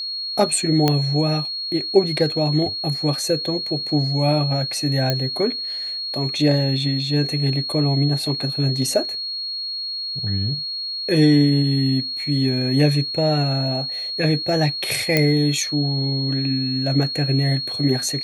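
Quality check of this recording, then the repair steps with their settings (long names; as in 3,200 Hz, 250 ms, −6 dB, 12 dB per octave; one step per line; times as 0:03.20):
whistle 4,300 Hz −25 dBFS
0:00.88: click −4 dBFS
0:05.10: click −6 dBFS
0:15.17: click −3 dBFS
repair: click removal
notch filter 4,300 Hz, Q 30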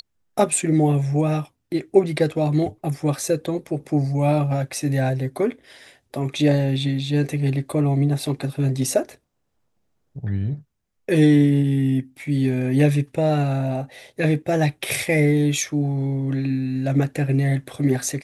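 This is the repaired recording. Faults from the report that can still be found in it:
none of them is left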